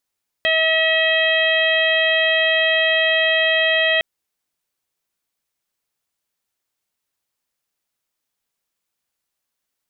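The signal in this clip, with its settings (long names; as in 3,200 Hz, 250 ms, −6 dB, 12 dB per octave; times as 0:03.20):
steady harmonic partials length 3.56 s, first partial 642 Hz, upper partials −14/2/−2/−1/−13 dB, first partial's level −20 dB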